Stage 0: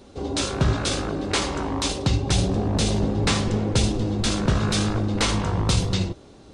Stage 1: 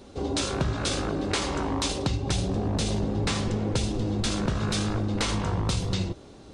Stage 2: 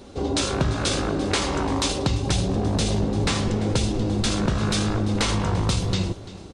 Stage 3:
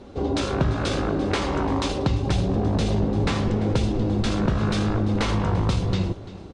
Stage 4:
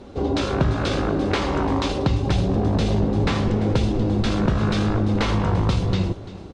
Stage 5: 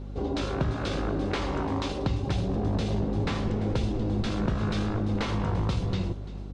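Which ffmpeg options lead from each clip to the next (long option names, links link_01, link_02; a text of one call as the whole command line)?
ffmpeg -i in.wav -af "acompressor=threshold=-23dB:ratio=6" out.wav
ffmpeg -i in.wav -af "aecho=1:1:342|684|1026:0.141|0.0438|0.0136,volume=4dB" out.wav
ffmpeg -i in.wav -af "aemphasis=mode=reproduction:type=75fm" out.wav
ffmpeg -i in.wav -filter_complex "[0:a]acrossover=split=6000[link_01][link_02];[link_02]acompressor=threshold=-50dB:ratio=4:attack=1:release=60[link_03];[link_01][link_03]amix=inputs=2:normalize=0,volume=2dB" out.wav
ffmpeg -i in.wav -af "aeval=exprs='val(0)+0.0355*(sin(2*PI*50*n/s)+sin(2*PI*2*50*n/s)/2+sin(2*PI*3*50*n/s)/3+sin(2*PI*4*50*n/s)/4+sin(2*PI*5*50*n/s)/5)':channel_layout=same,volume=-7.5dB" out.wav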